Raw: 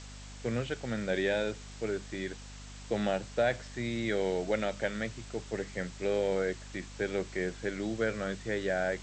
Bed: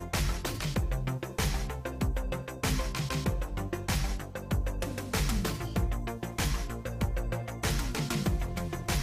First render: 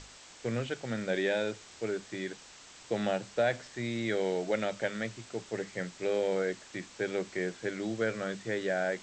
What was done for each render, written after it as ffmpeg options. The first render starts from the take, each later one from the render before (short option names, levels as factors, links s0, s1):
-af "bandreject=f=50:t=h:w=6,bandreject=f=100:t=h:w=6,bandreject=f=150:t=h:w=6,bandreject=f=200:t=h:w=6,bandreject=f=250:t=h:w=6"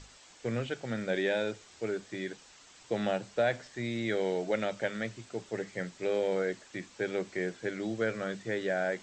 -af "afftdn=nr=6:nf=-53"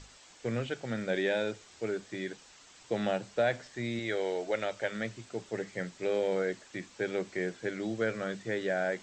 -filter_complex "[0:a]asettb=1/sr,asplit=3[s0][s1][s2];[s0]atrim=end=3.994[s3];[s1]atrim=start=3.99:end=4.92,asetpts=PTS-STARTPTS,afade=t=in:d=0.004:c=qsin,afade=t=out:st=0.926:d=0.004:c=qsin,equalizer=f=190:w=1.5:g=-11[s4];[s2]atrim=start=4.916[s5];[s3][s4]acrossfade=d=0.004:c1=hsin:c2=qsin[s6];[s6][s5]acrossfade=d=0.004:c1=qsin:c2=hsin"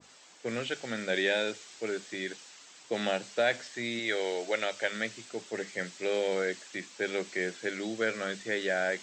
-af "highpass=200,adynamicequalizer=threshold=0.00447:dfrequency=1600:dqfactor=0.7:tfrequency=1600:tqfactor=0.7:attack=5:release=100:ratio=0.375:range=4:mode=boostabove:tftype=highshelf"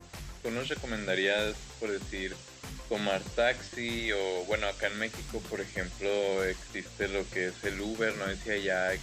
-filter_complex "[1:a]volume=0.2[s0];[0:a][s0]amix=inputs=2:normalize=0"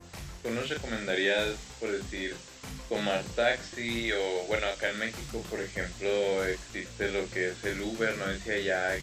-filter_complex "[0:a]asplit=2[s0][s1];[s1]adelay=35,volume=0.562[s2];[s0][s2]amix=inputs=2:normalize=0"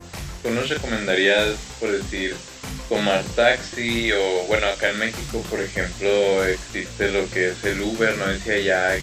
-af "volume=2.99"